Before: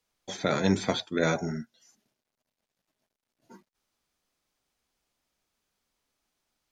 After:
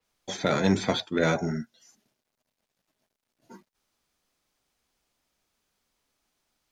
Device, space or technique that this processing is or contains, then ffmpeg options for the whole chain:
parallel distortion: -filter_complex "[0:a]asplit=2[link_01][link_02];[link_02]asoftclip=type=hard:threshold=-26.5dB,volume=-7dB[link_03];[link_01][link_03]amix=inputs=2:normalize=0,adynamicequalizer=threshold=0.00631:dfrequency=4900:dqfactor=0.7:tfrequency=4900:tqfactor=0.7:attack=5:release=100:ratio=0.375:range=2.5:mode=cutabove:tftype=highshelf"

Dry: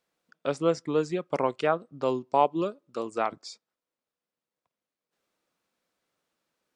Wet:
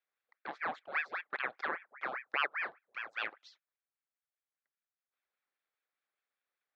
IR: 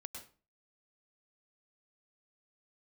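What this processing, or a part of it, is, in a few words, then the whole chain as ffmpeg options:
voice changer toy: -filter_complex "[0:a]aeval=exprs='val(0)*sin(2*PI*1200*n/s+1200*0.8/5*sin(2*PI*5*n/s))':channel_layout=same,highpass=600,equalizer=frequency=660:width_type=q:width=4:gain=-3,equalizer=frequency=940:width_type=q:width=4:gain=-8,equalizer=frequency=2900:width_type=q:width=4:gain=-8,lowpass=frequency=3600:width=0.5412,lowpass=frequency=3600:width=1.3066,asettb=1/sr,asplit=3[link_01][link_02][link_03];[link_01]atrim=end=3.044[link_04];[link_02]atrim=start=3.04:end=3.5,asetpts=PTS-STARTPTS,afade=type=in:duration=0.004:curve=qsin,afade=type=out:start_time=0.456:duration=0.004:curve=qsin,highshelf=frequency=4200:gain=5.5[link_05];[link_03]atrim=start=3.496[link_06];[link_04][link_05]acrossfade=duration=0.004:curve1=hsin:curve2=qsin[link_07];[link_07][link_06]acrossfade=duration=0.004:curve1=qsin:curve2=hsin,volume=-4.5dB"

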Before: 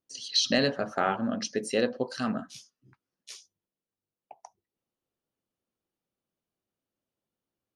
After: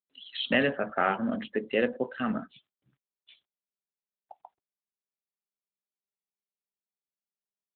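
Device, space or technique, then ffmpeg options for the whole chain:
mobile call with aggressive noise cancelling: -filter_complex "[0:a]asplit=3[link_01][link_02][link_03];[link_01]afade=type=out:start_time=2.4:duration=0.02[link_04];[link_02]highpass=frequency=89:width=0.5412,highpass=frequency=89:width=1.3066,afade=type=in:start_time=2.4:duration=0.02,afade=type=out:start_time=3.34:duration=0.02[link_05];[link_03]afade=type=in:start_time=3.34:duration=0.02[link_06];[link_04][link_05][link_06]amix=inputs=3:normalize=0,adynamicequalizer=threshold=0.00708:dfrequency=2100:dqfactor=1.5:tfrequency=2100:tqfactor=1.5:attack=5:release=100:ratio=0.375:range=3:mode=boostabove:tftype=bell,highpass=frequency=140:width=0.5412,highpass=frequency=140:width=1.3066,afftdn=noise_reduction=18:noise_floor=-47" -ar 8000 -c:a libopencore_amrnb -b:a 12200

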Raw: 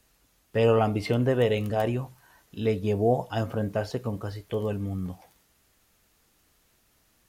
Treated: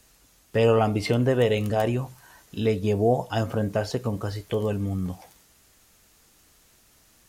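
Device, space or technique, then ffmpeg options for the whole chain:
parallel compression: -filter_complex "[0:a]equalizer=frequency=7100:width=0.91:gain=4.5,asplit=2[link_01][link_02];[link_02]acompressor=threshold=-32dB:ratio=6,volume=-1dB[link_03];[link_01][link_03]amix=inputs=2:normalize=0"

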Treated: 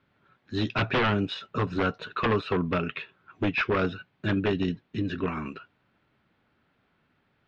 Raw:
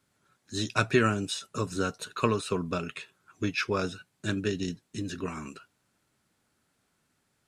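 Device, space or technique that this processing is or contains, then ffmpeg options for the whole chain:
synthesiser wavefolder: -af "aeval=exprs='0.0708*(abs(mod(val(0)/0.0708+3,4)-2)-1)':channel_layout=same,lowpass=frequency=3300:width=0.5412,lowpass=frequency=3300:width=1.3066,volume=5.5dB"

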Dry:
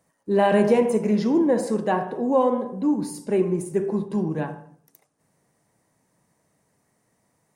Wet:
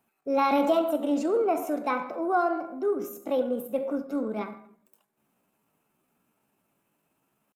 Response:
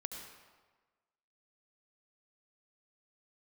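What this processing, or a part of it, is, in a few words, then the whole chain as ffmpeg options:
chipmunk voice: -af "asetrate=60591,aresample=44100,atempo=0.727827,volume=-5dB"

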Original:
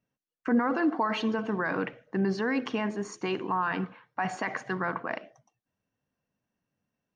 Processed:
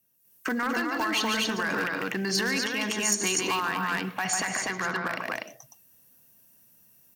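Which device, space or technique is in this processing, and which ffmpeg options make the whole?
FM broadcast chain: -filter_complex "[0:a]asettb=1/sr,asplit=3[link_01][link_02][link_03];[link_01]atrim=end=4.574[link_04];[link_02]atrim=start=4.57:end=5.07,asetpts=PTS-STARTPTS,afade=type=in:duration=0.004:curve=qsin,afade=type=out:start_time=0.496:duration=0.004:curve=qsin,lowpass=frequency=6300:width=0.5412,lowpass=frequency=6300:width=1.3066[link_05];[link_03]atrim=start=5.066[link_06];[link_04][link_05]acrossfade=duration=0.004:curve1=hsin:curve2=qsin[link_07];[link_07][link_06]acrossfade=duration=0.004:curve1=qsin:curve2=hsin,highpass=45,aecho=1:1:145.8|244.9:0.447|0.708,dynaudnorm=framelen=170:gausssize=3:maxgain=10dB,acrossover=split=120|1400[link_08][link_09][link_10];[link_08]acompressor=threshold=-48dB:ratio=4[link_11];[link_09]acompressor=threshold=-28dB:ratio=4[link_12];[link_10]acompressor=threshold=-26dB:ratio=4[link_13];[link_11][link_12][link_13]amix=inputs=3:normalize=0,aemphasis=mode=production:type=50fm,alimiter=limit=-17.5dB:level=0:latency=1:release=364,asoftclip=type=hard:threshold=-21.5dB,lowpass=frequency=15000:width=0.5412,lowpass=frequency=15000:width=1.3066,aemphasis=mode=production:type=50fm"

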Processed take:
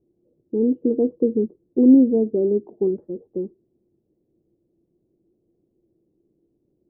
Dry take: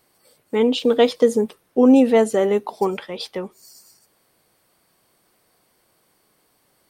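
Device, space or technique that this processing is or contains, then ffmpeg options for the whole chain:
under water: -af "lowpass=frequency=400:width=0.5412,lowpass=frequency=400:width=1.3066,equalizer=frequency=340:width_type=o:width=0.24:gain=11"

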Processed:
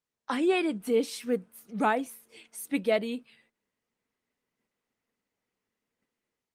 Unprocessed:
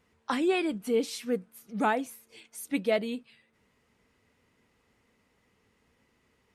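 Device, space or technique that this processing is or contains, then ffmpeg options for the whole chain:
video call: -filter_complex "[0:a]asplit=3[link_01][link_02][link_03];[link_01]afade=type=out:start_time=0.88:duration=0.02[link_04];[link_02]highpass=frequency=67:width=0.5412,highpass=frequency=67:width=1.3066,afade=type=in:start_time=0.88:duration=0.02,afade=type=out:start_time=1.78:duration=0.02[link_05];[link_03]afade=type=in:start_time=1.78:duration=0.02[link_06];[link_04][link_05][link_06]amix=inputs=3:normalize=0,highpass=150,dynaudnorm=framelen=110:gausssize=5:maxgain=9.5dB,agate=range=-16dB:threshold=-57dB:ratio=16:detection=peak,volume=-8dB" -ar 48000 -c:a libopus -b:a 32k

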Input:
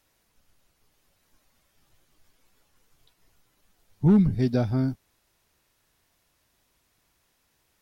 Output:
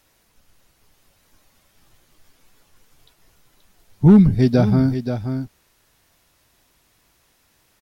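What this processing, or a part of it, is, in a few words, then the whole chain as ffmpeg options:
ducked delay: -filter_complex "[0:a]asplit=3[link_01][link_02][link_03];[link_02]adelay=529,volume=-8dB[link_04];[link_03]apad=whole_len=367758[link_05];[link_04][link_05]sidechaincompress=threshold=-23dB:ratio=8:attack=16:release=591[link_06];[link_01][link_06]amix=inputs=2:normalize=0,volume=8dB"

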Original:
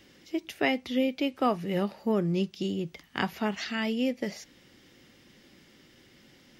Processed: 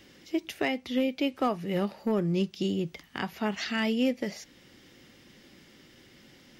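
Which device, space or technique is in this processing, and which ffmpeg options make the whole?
limiter into clipper: -af "alimiter=limit=-19dB:level=0:latency=1:release=478,asoftclip=type=hard:threshold=-21dB,volume=2dB"

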